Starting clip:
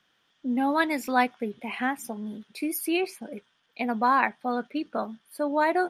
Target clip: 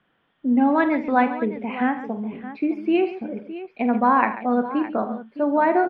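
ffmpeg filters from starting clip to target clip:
ffmpeg -i in.wav -af "lowpass=frequency=3000:width=0.5412,lowpass=frequency=3000:width=1.3066,tiltshelf=frequency=1200:gain=5,aecho=1:1:45|78|139|613:0.251|0.178|0.211|0.2,volume=2.5dB" out.wav

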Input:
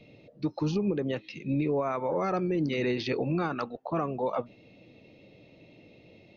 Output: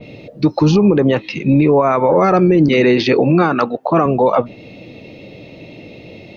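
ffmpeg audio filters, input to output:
ffmpeg -i in.wav -filter_complex "[0:a]asettb=1/sr,asplit=3[link_01][link_02][link_03];[link_01]atrim=end=0.744[link_04];[link_02]atrim=start=0.74:end=1.82,asetpts=PTS-STARTPTS,afade=type=in:duration=0.004:curve=qsin,afade=type=out:start_time=1.076:duration=0.004:curve=qsin,equalizer=frequency=1000:width_type=o:width=0.83:gain=7[link_05];[link_03]atrim=start=1.816[link_06];[link_04][link_05]acrossfade=duration=0.004:curve1=hsin:curve2=qsin[link_07];[link_07][link_06]acrossfade=duration=0.004:curve1=qsin:curve2=hsin,asettb=1/sr,asplit=3[link_08][link_09][link_10];[link_08]atrim=end=2.684[link_11];[link_09]atrim=start=2.68:end=4.06,asetpts=PTS-STARTPTS,afade=type=in:duration=0.004:curve=qsin,afade=type=out:start_time=1.376:duration=0.004:curve=qsin,highpass=140[link_12];[link_10]atrim=start=4.056[link_13];[link_11][link_12]acrossfade=duration=0.004:curve1=hsin:curve2=qsin[link_14];[link_14][link_13]acrossfade=duration=0.004:curve1=qsin:curve2=hsin,alimiter=level_in=21.5dB:limit=-1dB:release=50:level=0:latency=1,adynamicequalizer=threshold=0.0355:dfrequency=2700:dqfactor=0.7:tfrequency=2700:tqfactor=0.7:attack=5:release=100:ratio=0.375:range=2:mode=cutabove:tftype=highshelf,volume=-3dB" out.wav

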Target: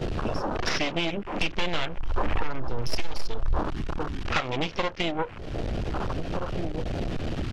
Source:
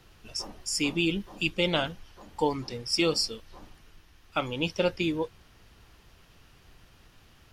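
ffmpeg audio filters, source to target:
ffmpeg -i in.wav -filter_complex "[0:a]aeval=exprs='val(0)+0.5*0.0188*sgn(val(0))':channel_layout=same,aeval=exprs='0.282*(cos(1*acos(clip(val(0)/0.282,-1,1)))-cos(1*PI/2))+0.126*(cos(6*acos(clip(val(0)/0.282,-1,1)))-cos(6*PI/2))':channel_layout=same,lowpass=4100,asplit=2[link_01][link_02];[link_02]adelay=1574,volume=-21dB,highshelf=frequency=4000:gain=-35.4[link_03];[link_01][link_03]amix=inputs=2:normalize=0,afwtdn=0.01,agate=range=-11dB:threshold=-47dB:ratio=16:detection=peak,acompressor=threshold=-39dB:ratio=12,asettb=1/sr,asplit=3[link_04][link_05][link_06];[link_04]atrim=end=1.224[link_07];[link_05]atrim=start=1.22:end=3.59,asetpts=PTS-STARTPTS,afade=type=in:duration=0.004:curve=qsin,afade=type=out:start_time=2.366:duration=0.004:curve=qsin,asubboost=boost=11:cutoff=77[link_08];[link_06]atrim=start=3.586[link_09];[link_07][link_08]acrossfade=duration=0.004:curve1=hsin:curve2=qsin[link_10];[link_10][link_09]acrossfade=duration=0.004:curve1=qsin:curve2=hsin,aeval=exprs='0.133*sin(PI/2*2.82*val(0)/0.133)':channel_layout=same,lowshelf=frequency=270:gain=-6.5,volume=7dB" out.wav

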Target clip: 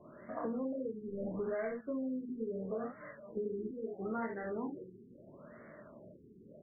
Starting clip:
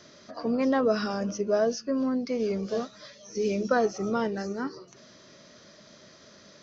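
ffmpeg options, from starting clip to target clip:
ffmpeg -i in.wav -filter_complex "[0:a]asettb=1/sr,asplit=3[link_01][link_02][link_03];[link_01]atrim=end=1.084[link_04];[link_02]atrim=start=1.08:end=1.74,asetpts=PTS-STARTPTS,afade=type=in:duration=0.004:curve=qsin,afade=type=out:start_time=0.656:duration=0.004:curve=qsin,aeval=exprs='val(0)+0.5*0.0316*sgn(val(0))':channel_layout=same[link_05];[link_03]atrim=start=1.736[link_06];[link_04][link_05]acrossfade=duration=0.004:curve1=hsin:curve2=qsin[link_07];[link_07][link_06]acrossfade=duration=0.004:curve1=qsin:curve2=hsin,aecho=1:1:27|53|70:0.596|0.473|0.531,acrossover=split=2000[link_08][link_09];[link_08]acompressor=threshold=-33dB:ratio=10[link_10];[link_10][link_09]amix=inputs=2:normalize=0,afftfilt=real='re*lt(b*sr/1024,450*pow(2300/450,0.5+0.5*sin(2*PI*0.75*pts/sr)))':imag='im*lt(b*sr/1024,450*pow(2300/450,0.5+0.5*sin(2*PI*0.75*pts/sr)))':win_size=1024:overlap=0.75,volume=-2dB" out.wav

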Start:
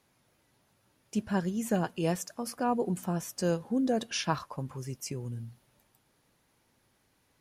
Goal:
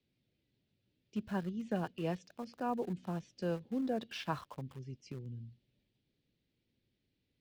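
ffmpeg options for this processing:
ffmpeg -i in.wav -filter_complex "[0:a]lowpass=frequency=4100:width=0.5412,lowpass=frequency=4100:width=1.3066,acrossover=split=210|480|2300[link_01][link_02][link_03][link_04];[link_03]aeval=exprs='val(0)*gte(abs(val(0)),0.00501)':channel_layout=same[link_05];[link_01][link_02][link_05][link_04]amix=inputs=4:normalize=0,volume=-7dB" out.wav

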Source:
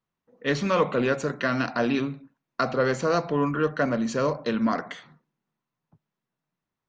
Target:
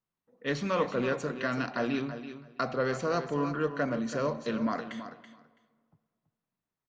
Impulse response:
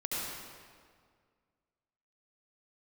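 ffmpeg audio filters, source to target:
-filter_complex "[0:a]aecho=1:1:330|660:0.282|0.0423,asplit=2[link_01][link_02];[1:a]atrim=start_sample=2205,lowpass=5500[link_03];[link_02][link_03]afir=irnorm=-1:irlink=0,volume=-23.5dB[link_04];[link_01][link_04]amix=inputs=2:normalize=0,volume=-6.5dB"

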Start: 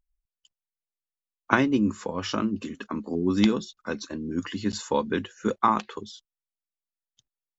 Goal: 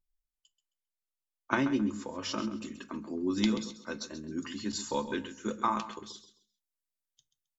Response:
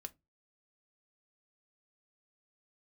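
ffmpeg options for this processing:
-filter_complex "[0:a]asetnsamples=nb_out_samples=441:pad=0,asendcmd='2.25 highshelf g 11',highshelf=frequency=4200:gain=5,aecho=1:1:133|266|399:0.237|0.0593|0.0148[link_01];[1:a]atrim=start_sample=2205,asetrate=37044,aresample=44100[link_02];[link_01][link_02]afir=irnorm=-1:irlink=0,volume=-4.5dB"

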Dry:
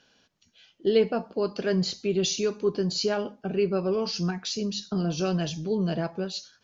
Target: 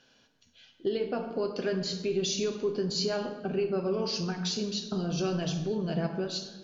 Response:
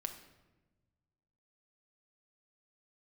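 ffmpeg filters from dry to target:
-filter_complex "[0:a]acompressor=threshold=-26dB:ratio=6[link_01];[1:a]atrim=start_sample=2205,asetrate=34398,aresample=44100[link_02];[link_01][link_02]afir=irnorm=-1:irlink=0"

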